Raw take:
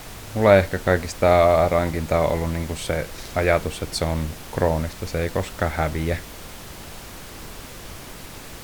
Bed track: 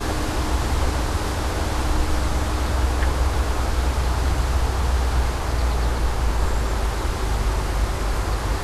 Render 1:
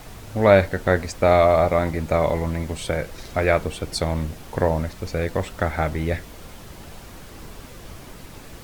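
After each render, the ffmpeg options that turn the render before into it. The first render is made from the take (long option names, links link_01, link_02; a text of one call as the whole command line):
ffmpeg -i in.wav -af "afftdn=noise_reduction=6:noise_floor=-39" out.wav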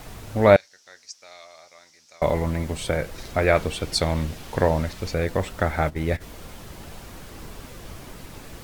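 ffmpeg -i in.wav -filter_complex "[0:a]asettb=1/sr,asplit=3[link_01][link_02][link_03];[link_01]atrim=end=0.564[link_04];[link_02]atrim=start=0.56:end=2.22,asetpts=PTS-STARTPTS,afade=type=in:duration=0.004:curve=qsin,afade=type=out:start_time=1.656:duration=0.004:curve=qsin,bandpass=frequency=5600:width_type=q:width=4.7[link_05];[link_03]atrim=start=2.216[link_06];[link_04][link_05]acrossfade=duration=0.004:curve1=hsin:curve2=qsin[link_07];[link_07][link_06]acrossfade=duration=0.004:curve1=qsin:curve2=hsin,asettb=1/sr,asplit=3[link_08][link_09][link_10];[link_08]atrim=end=3.554[link_11];[link_09]atrim=start=3.55:end=5.14,asetpts=PTS-STARTPTS,afade=type=in:duration=0.004:curve=qsin,afade=type=out:start_time=1.586:duration=0.004:curve=qsin,equalizer=frequency=3700:width_type=o:width=2:gain=4.5[link_12];[link_10]atrim=start=5.136[link_13];[link_11][link_12]acrossfade=duration=0.004:curve1=hsin:curve2=qsin[link_14];[link_14][link_13]acrossfade=duration=0.004:curve1=qsin:curve2=hsin,asplit=3[link_15][link_16][link_17];[link_15]afade=type=out:start_time=5.8:duration=0.02[link_18];[link_16]agate=range=-13dB:threshold=-26dB:ratio=16:release=100:detection=peak,afade=type=in:start_time=5.8:duration=0.02,afade=type=out:start_time=6.2:duration=0.02[link_19];[link_17]afade=type=in:start_time=6.2:duration=0.02[link_20];[link_18][link_19][link_20]amix=inputs=3:normalize=0" out.wav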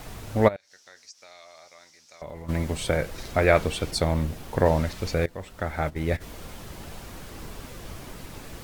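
ffmpeg -i in.wav -filter_complex "[0:a]asplit=3[link_01][link_02][link_03];[link_01]afade=type=out:start_time=0.47:duration=0.02[link_04];[link_02]acompressor=threshold=-44dB:ratio=2.5:attack=3.2:release=140:knee=1:detection=peak,afade=type=in:start_time=0.47:duration=0.02,afade=type=out:start_time=2.48:duration=0.02[link_05];[link_03]afade=type=in:start_time=2.48:duration=0.02[link_06];[link_04][link_05][link_06]amix=inputs=3:normalize=0,asettb=1/sr,asplit=3[link_07][link_08][link_09];[link_07]atrim=end=3.914[link_10];[link_08]atrim=start=3.91:end=4.66,asetpts=PTS-STARTPTS,afade=type=in:duration=0.004:curve=qsin,afade=type=out:start_time=0.746:duration=0.004:curve=qsin,equalizer=frequency=3900:width_type=o:width=2.8:gain=-5.5[link_11];[link_09]atrim=start=4.656[link_12];[link_10][link_11]acrossfade=duration=0.004:curve1=hsin:curve2=qsin[link_13];[link_13][link_12]acrossfade=duration=0.004:curve1=qsin:curve2=hsin,asplit=2[link_14][link_15];[link_14]atrim=end=5.26,asetpts=PTS-STARTPTS,afade=type=out:start_time=5.256:duration=0.004:curve=hsin:silence=0.125893[link_16];[link_15]atrim=start=5.26,asetpts=PTS-STARTPTS,afade=type=in:duration=1.02:silence=0.125893[link_17];[link_16][link_17]concat=n=2:v=0:a=1" out.wav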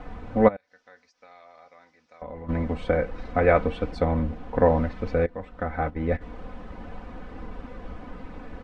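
ffmpeg -i in.wav -af "lowpass=1600,aecho=1:1:4:0.72" out.wav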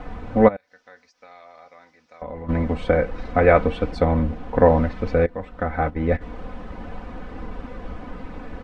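ffmpeg -i in.wav -af "volume=4.5dB,alimiter=limit=-2dB:level=0:latency=1" out.wav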